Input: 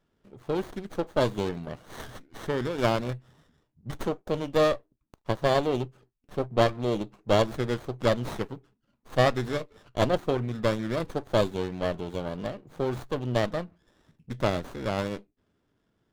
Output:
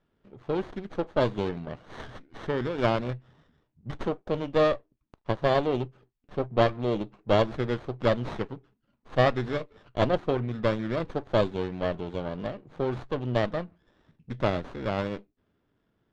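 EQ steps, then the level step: low-pass 3.8 kHz 12 dB/octave; 0.0 dB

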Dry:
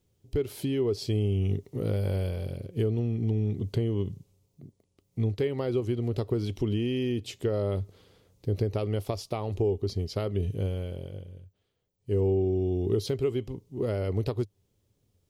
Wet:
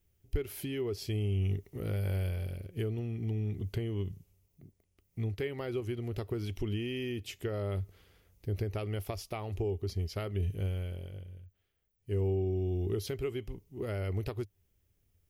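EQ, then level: graphic EQ 125/250/500/1000/4000/8000 Hz -12/-10/-11/-9/-11/-8 dB; +6.0 dB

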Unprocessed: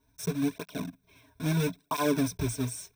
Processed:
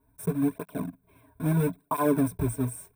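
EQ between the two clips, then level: FFT filter 1.1 kHz 0 dB, 6.1 kHz -22 dB, 9.1 kHz -1 dB; +3.0 dB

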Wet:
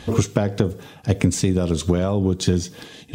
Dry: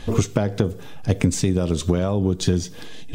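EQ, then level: high-pass 63 Hz; +1.0 dB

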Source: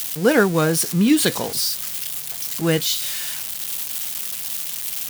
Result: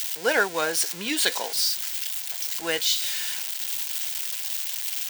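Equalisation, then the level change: high-pass 730 Hz 12 dB/octave; peaking EQ 12 kHz -8.5 dB 0.65 oct; band-stop 1.2 kHz, Q 5.5; 0.0 dB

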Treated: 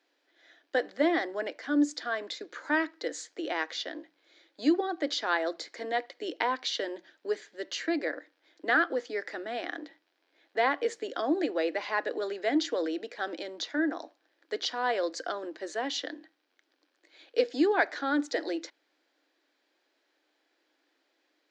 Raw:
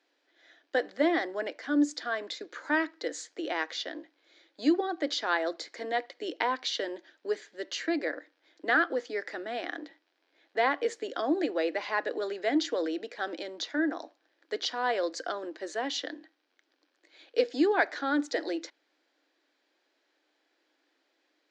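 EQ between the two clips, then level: hum notches 60/120/180 Hz; 0.0 dB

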